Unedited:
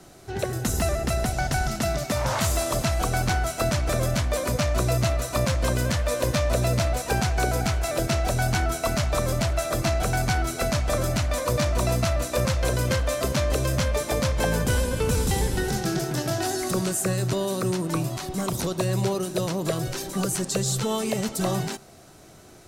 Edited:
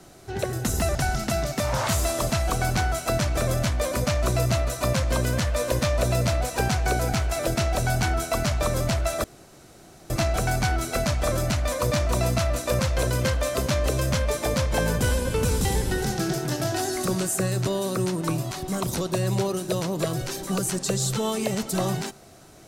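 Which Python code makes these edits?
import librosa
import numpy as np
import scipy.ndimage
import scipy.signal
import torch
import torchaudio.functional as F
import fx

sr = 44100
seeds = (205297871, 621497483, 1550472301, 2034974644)

y = fx.edit(x, sr, fx.cut(start_s=0.95, length_s=0.52),
    fx.insert_room_tone(at_s=9.76, length_s=0.86), tone=tone)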